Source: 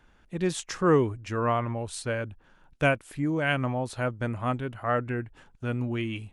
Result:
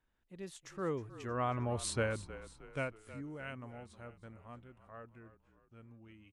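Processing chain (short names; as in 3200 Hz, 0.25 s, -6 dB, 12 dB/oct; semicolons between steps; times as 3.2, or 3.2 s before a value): Doppler pass-by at 1.86, 18 m/s, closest 3.5 m; frequency-shifting echo 0.314 s, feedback 47%, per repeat -39 Hz, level -15 dB; gain -1 dB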